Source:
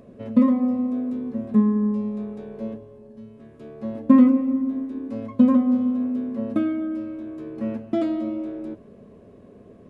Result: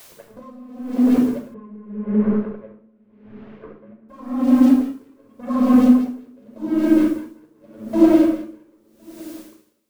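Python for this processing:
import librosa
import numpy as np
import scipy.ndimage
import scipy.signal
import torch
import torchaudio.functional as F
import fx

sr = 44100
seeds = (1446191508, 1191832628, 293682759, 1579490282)

y = fx.dynamic_eq(x, sr, hz=150.0, q=1.8, threshold_db=-34.0, ratio=4.0, max_db=4)
y = fx.wah_lfo(y, sr, hz=5.1, low_hz=250.0, high_hz=1400.0, q=2.7)
y = fx.leveller(y, sr, passes=3)
y = fx.echo_feedback(y, sr, ms=1062, feedback_pct=40, wet_db=-23.0)
y = fx.room_shoebox(y, sr, seeds[0], volume_m3=2400.0, walls='furnished', distance_m=5.2)
y = fx.quant_dither(y, sr, seeds[1], bits=8, dither='triangular')
y = fx.lowpass(y, sr, hz=2400.0, slope=24, at=(1.54, 4.09))
y = y * 10.0 ** (-32 * (0.5 - 0.5 * np.cos(2.0 * np.pi * 0.86 * np.arange(len(y)) / sr)) / 20.0)
y = y * librosa.db_to_amplitude(3.0)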